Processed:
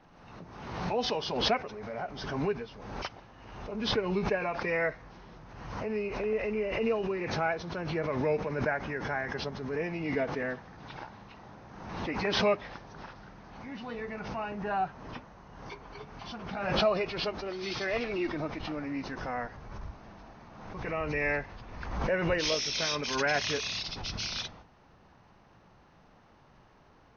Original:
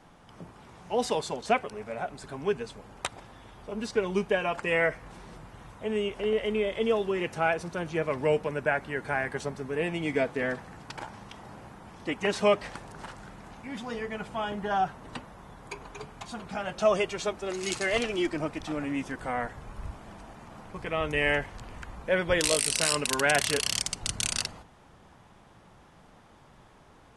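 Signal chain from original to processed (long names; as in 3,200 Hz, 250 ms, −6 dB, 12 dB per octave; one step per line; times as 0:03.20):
hearing-aid frequency compression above 2,000 Hz 1.5 to 1
background raised ahead of every attack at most 45 dB per second
level −4 dB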